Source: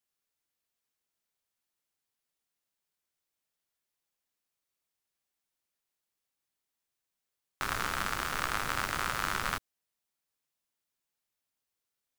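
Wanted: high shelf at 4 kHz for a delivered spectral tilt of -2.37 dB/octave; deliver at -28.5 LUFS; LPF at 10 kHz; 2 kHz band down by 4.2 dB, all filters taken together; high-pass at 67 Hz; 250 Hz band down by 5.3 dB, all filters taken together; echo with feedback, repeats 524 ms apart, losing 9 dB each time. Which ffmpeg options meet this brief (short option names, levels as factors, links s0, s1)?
-af "highpass=67,lowpass=10000,equalizer=f=250:t=o:g=-7.5,equalizer=f=2000:t=o:g=-7,highshelf=f=4000:g=6,aecho=1:1:524|1048|1572|2096:0.355|0.124|0.0435|0.0152,volume=2.11"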